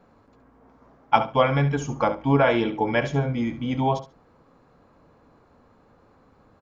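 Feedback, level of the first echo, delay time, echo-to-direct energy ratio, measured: 17%, -12.0 dB, 69 ms, -12.0 dB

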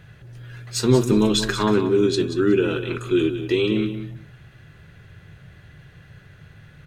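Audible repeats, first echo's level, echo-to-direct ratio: 2, -10.0 dB, -10.0 dB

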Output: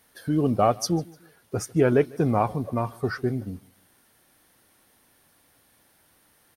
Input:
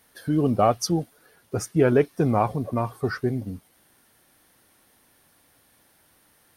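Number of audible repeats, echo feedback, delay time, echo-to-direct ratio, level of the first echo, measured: 2, 38%, 0.15 s, -23.5 dB, -24.0 dB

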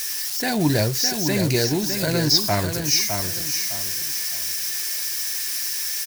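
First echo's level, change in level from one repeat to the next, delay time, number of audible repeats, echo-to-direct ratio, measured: -6.5 dB, -10.0 dB, 0.609 s, 3, -6.0 dB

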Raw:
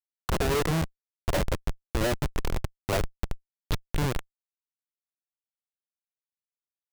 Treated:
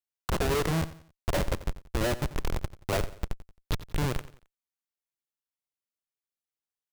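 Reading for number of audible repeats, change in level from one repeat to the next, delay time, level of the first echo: 3, -8.5 dB, 89 ms, -16.0 dB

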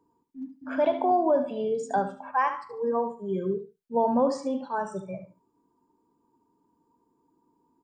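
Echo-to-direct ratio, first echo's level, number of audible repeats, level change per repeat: -10.5 dB, -10.5 dB, 2, -15.0 dB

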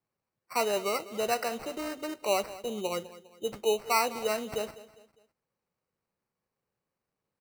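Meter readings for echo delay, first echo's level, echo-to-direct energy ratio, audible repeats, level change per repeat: 0.202 s, -17.0 dB, -16.5 dB, 3, -8.0 dB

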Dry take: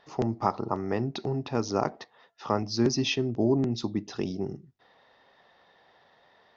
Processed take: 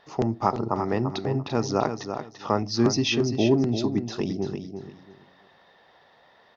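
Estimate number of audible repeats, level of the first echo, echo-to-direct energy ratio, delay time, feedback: 3, -8.0 dB, -8.0 dB, 0.341 s, 22%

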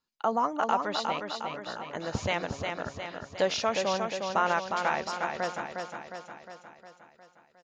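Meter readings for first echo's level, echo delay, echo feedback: -5.0 dB, 0.358 s, 57%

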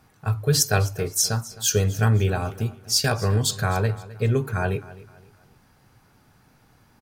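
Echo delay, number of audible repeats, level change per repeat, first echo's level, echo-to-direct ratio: 0.26 s, 2, -9.0 dB, -18.5 dB, -18.0 dB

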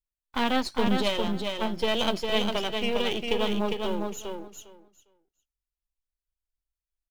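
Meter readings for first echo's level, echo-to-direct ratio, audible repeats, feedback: -4.5 dB, -4.5 dB, 2, 16%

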